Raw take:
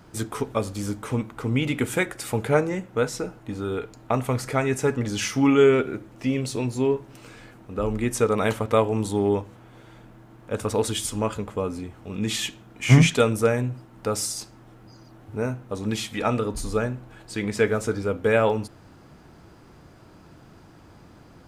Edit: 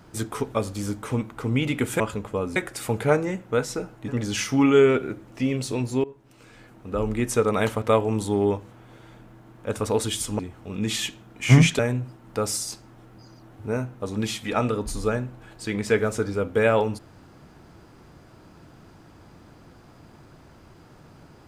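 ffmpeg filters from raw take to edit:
-filter_complex "[0:a]asplit=7[a][b][c][d][e][f][g];[a]atrim=end=2.002[h];[b]atrim=start=11.228:end=11.792[i];[c]atrim=start=1.998:end=3.522[j];[d]atrim=start=4.918:end=6.88,asetpts=PTS-STARTPTS,afade=t=out:st=1.958:d=0.004:c=hsin:silence=0.0794328[k];[e]atrim=start=6.88:end=11.232,asetpts=PTS-STARTPTS,afade=t=in:d=0.87:silence=0.0794328[l];[f]atrim=start=11.788:end=13.192[m];[g]atrim=start=13.478[n];[h][i]acrossfade=d=0.004:c1=hsin:c2=hsin[o];[o][j]acrossfade=d=0.004:c1=hsin:c2=hsin[p];[k][l]concat=n=2:v=0:a=1[q];[p][q]acrossfade=d=0.004:c1=hsin:c2=hsin[r];[r][m]acrossfade=d=0.004:c1=hsin:c2=hsin[s];[s][n]acrossfade=d=0.004:c1=hsin:c2=hsin"

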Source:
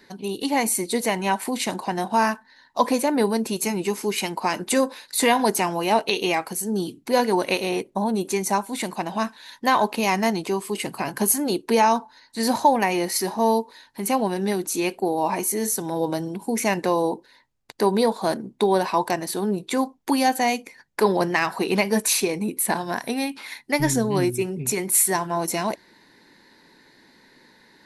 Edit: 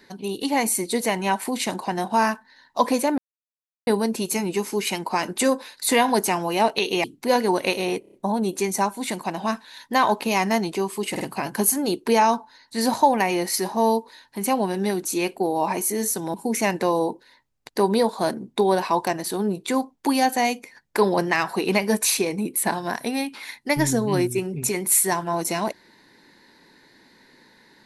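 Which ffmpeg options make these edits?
-filter_complex "[0:a]asplit=10[a][b][c][d][e][f][g][h][i][j];[a]atrim=end=3.18,asetpts=PTS-STARTPTS,afade=t=out:st=3.176:d=0.004:c=hsin,apad=pad_dur=0.69[k];[b]atrim=start=3.18:end=6.352,asetpts=PTS-STARTPTS,afade=t=in:d=0.004:c=hsin[l];[c]atrim=start=6.878:end=7.882[m];[d]atrim=start=7.848:end=7.882[n];[e]atrim=start=7.848:end=7.882[o];[f]atrim=start=7.848:end=7.882[p];[g]atrim=start=7.848:end=10.882[q];[h]atrim=start=10.828:end=10.882[r];[i]atrim=start=10.828:end=15.962[s];[j]atrim=start=16.368[t];[k][l]concat=n=2:v=0:a=1[u];[u][m]acrossfade=d=0.004:c1=hsin:c2=hsin[v];[v][n]acrossfade=d=0.004:c1=hsin:c2=hsin[w];[w][o]acrossfade=d=0.004:c1=hsin:c2=hsin[x];[x][p]acrossfade=d=0.004:c1=hsin:c2=hsin[y];[y][q]acrossfade=d=0.004:c1=hsin:c2=hsin[z];[z][r]acrossfade=d=0.004:c1=hsin:c2=hsin[aa];[aa][s]acrossfade=d=0.004:c1=hsin:c2=hsin[ab];[ab][t]acrossfade=d=0.004:c1=hsin:c2=hsin"

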